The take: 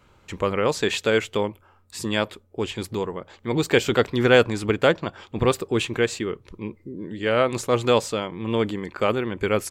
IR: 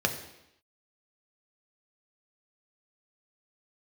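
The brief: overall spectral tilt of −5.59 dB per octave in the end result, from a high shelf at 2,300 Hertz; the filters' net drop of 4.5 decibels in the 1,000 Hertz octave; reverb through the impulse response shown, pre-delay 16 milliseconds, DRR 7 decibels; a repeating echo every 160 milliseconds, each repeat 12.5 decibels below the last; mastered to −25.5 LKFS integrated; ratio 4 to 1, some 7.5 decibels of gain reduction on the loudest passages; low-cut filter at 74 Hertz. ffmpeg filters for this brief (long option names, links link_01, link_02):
-filter_complex "[0:a]highpass=74,equalizer=frequency=1000:width_type=o:gain=-4,highshelf=frequency=2300:gain=-8.5,acompressor=threshold=-23dB:ratio=4,aecho=1:1:160|320|480:0.237|0.0569|0.0137,asplit=2[link_01][link_02];[1:a]atrim=start_sample=2205,adelay=16[link_03];[link_02][link_03]afir=irnorm=-1:irlink=0,volume=-17dB[link_04];[link_01][link_04]amix=inputs=2:normalize=0,volume=3dB"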